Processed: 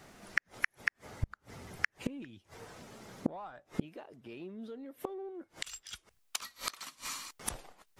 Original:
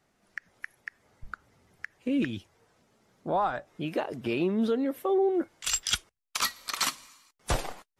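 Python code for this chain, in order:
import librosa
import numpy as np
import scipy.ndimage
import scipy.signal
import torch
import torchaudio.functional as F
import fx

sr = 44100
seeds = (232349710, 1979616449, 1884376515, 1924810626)

p1 = 10.0 ** (-28.0 / 20.0) * np.tanh(x / 10.0 ** (-28.0 / 20.0))
p2 = x + F.gain(torch.from_numpy(p1), -7.0).numpy()
p3 = fx.gate_flip(p2, sr, shuts_db=-30.0, range_db=-32)
y = F.gain(torch.from_numpy(p3), 12.0).numpy()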